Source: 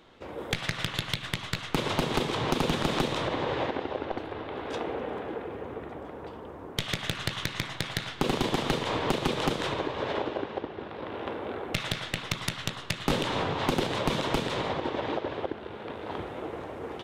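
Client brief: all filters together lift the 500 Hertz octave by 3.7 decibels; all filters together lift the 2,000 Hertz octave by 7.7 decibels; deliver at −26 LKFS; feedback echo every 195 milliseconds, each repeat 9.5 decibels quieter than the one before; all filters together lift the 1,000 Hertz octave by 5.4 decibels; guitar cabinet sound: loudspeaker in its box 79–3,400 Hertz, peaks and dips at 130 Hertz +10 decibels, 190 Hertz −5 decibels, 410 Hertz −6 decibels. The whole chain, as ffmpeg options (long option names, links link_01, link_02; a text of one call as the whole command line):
ffmpeg -i in.wav -af "highpass=79,equalizer=frequency=130:width_type=q:width=4:gain=10,equalizer=frequency=190:width_type=q:width=4:gain=-5,equalizer=frequency=410:width_type=q:width=4:gain=-6,lowpass=frequency=3400:width=0.5412,lowpass=frequency=3400:width=1.3066,equalizer=frequency=500:width_type=o:gain=6,equalizer=frequency=1000:width_type=o:gain=3,equalizer=frequency=2000:width_type=o:gain=8.5,aecho=1:1:195|390|585|780:0.335|0.111|0.0365|0.012,volume=1dB" out.wav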